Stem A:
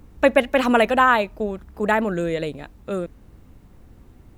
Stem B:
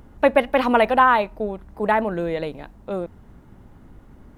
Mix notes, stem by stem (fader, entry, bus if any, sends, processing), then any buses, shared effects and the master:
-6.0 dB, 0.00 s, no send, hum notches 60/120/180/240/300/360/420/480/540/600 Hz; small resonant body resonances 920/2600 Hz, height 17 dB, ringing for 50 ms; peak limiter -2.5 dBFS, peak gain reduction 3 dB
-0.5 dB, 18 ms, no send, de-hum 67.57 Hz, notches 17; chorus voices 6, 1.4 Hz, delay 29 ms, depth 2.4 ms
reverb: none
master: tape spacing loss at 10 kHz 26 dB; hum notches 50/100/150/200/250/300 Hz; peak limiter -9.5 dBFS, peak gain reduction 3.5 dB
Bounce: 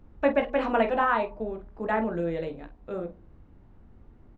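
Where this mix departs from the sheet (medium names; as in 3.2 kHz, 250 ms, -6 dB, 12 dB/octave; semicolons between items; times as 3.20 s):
stem A: missing small resonant body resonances 920/2600 Hz, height 17 dB, ringing for 50 ms; stem B -0.5 dB -> -7.5 dB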